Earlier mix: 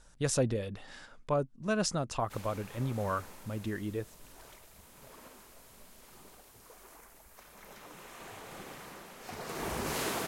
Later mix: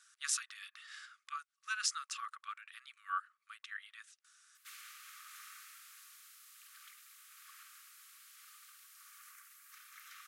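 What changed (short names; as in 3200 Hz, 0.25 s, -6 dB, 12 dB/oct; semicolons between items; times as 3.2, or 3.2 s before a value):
background: entry +2.35 s; master: add brick-wall FIR high-pass 1100 Hz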